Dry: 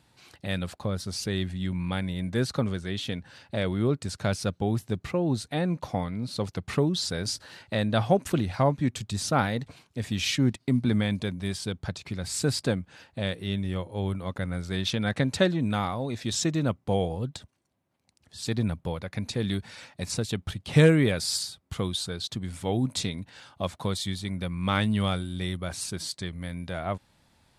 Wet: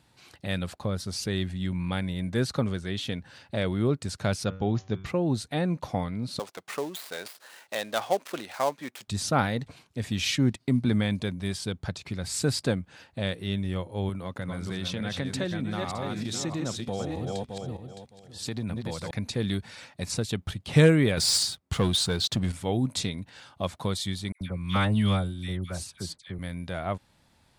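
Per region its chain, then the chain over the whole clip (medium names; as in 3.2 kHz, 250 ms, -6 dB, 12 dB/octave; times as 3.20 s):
4.44–5.06 s: brick-wall FIR low-pass 7.1 kHz + de-hum 95.12 Hz, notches 37
6.39–9.08 s: dead-time distortion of 0.095 ms + high-pass 530 Hz
14.09–19.11 s: backward echo that repeats 307 ms, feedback 40%, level -4 dB + high-pass 86 Hz + compression 2.5:1, threshold -29 dBFS
21.17–22.52 s: low-pass 11 kHz + waveshaping leveller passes 2
24.32–26.39 s: bass shelf 94 Hz +8 dB + phase dispersion lows, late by 89 ms, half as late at 1.6 kHz + upward expansion, over -44 dBFS
whole clip: none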